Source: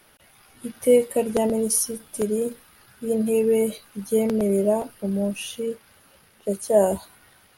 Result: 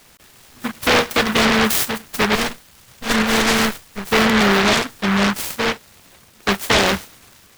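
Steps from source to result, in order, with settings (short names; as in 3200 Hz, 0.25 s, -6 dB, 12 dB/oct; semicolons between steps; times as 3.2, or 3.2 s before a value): 2.35–4.08 minimum comb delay 1.4 ms; limiter -15 dBFS, peak gain reduction 9 dB; noise-modulated delay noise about 1300 Hz, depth 0.41 ms; gain +7.5 dB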